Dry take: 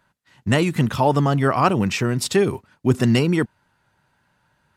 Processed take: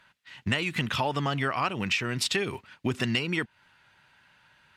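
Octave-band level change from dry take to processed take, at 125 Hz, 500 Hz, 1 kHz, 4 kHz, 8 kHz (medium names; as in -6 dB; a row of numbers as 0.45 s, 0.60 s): -12.0 dB, -12.5 dB, -9.0 dB, -0.5 dB, -6.5 dB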